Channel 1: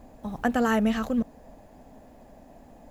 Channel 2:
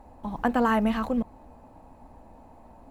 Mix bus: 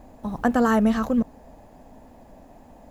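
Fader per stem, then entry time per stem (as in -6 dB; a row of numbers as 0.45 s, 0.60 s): +1.0 dB, -4.5 dB; 0.00 s, 0.00 s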